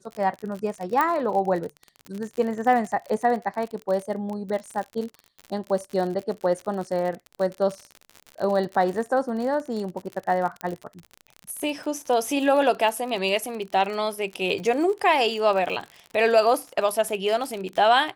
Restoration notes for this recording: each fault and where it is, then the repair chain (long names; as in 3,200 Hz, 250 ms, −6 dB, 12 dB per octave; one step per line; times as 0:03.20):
surface crackle 56 per second −30 dBFS
0:01.01: click −10 dBFS
0:10.61: click −16 dBFS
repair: click removal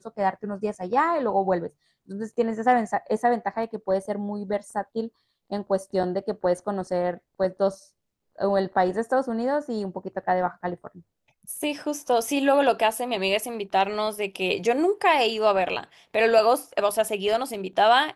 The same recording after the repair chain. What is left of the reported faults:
0:01.01: click